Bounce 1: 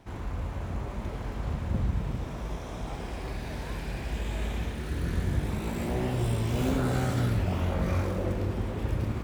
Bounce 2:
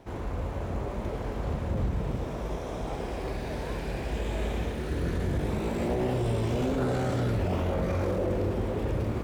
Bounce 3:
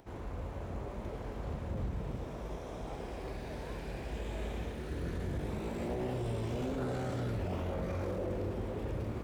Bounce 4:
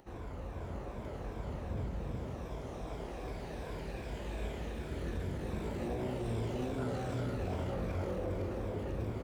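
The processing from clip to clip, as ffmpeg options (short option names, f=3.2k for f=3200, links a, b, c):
-filter_complex "[0:a]acrossover=split=8300[a][b];[b]acompressor=threshold=-57dB:ratio=4:attack=1:release=60[c];[a][c]amix=inputs=2:normalize=0,equalizer=f=480:w=0.98:g=7.5,alimiter=limit=-20.5dB:level=0:latency=1:release=10"
-af "acompressor=mode=upward:threshold=-48dB:ratio=2.5,volume=-8dB"
-af "afftfilt=real='re*pow(10,7/40*sin(2*PI*(1.7*log(max(b,1)*sr/1024/100)/log(2)-(-2.6)*(pts-256)/sr)))':imag='im*pow(10,7/40*sin(2*PI*(1.7*log(max(b,1)*sr/1024/100)/log(2)-(-2.6)*(pts-256)/sr)))':win_size=1024:overlap=0.75,aecho=1:1:504:0.473,volume=-2dB"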